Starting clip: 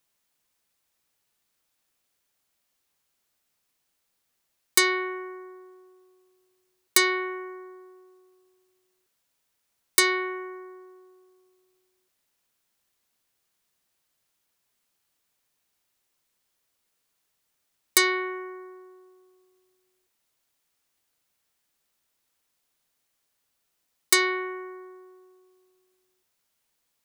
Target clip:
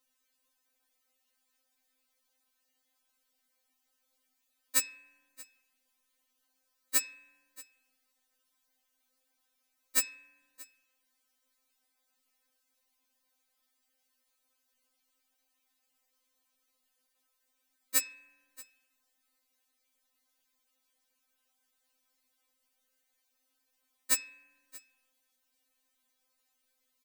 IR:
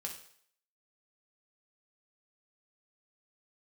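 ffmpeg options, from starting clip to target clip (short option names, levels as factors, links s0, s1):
-filter_complex "[0:a]aecho=1:1:631:0.0794,asplit=2[s0][s1];[1:a]atrim=start_sample=2205,lowpass=3600[s2];[s1][s2]afir=irnorm=-1:irlink=0,volume=0.15[s3];[s0][s3]amix=inputs=2:normalize=0,afftfilt=real='re*3.46*eq(mod(b,12),0)':imag='im*3.46*eq(mod(b,12),0)':win_size=2048:overlap=0.75"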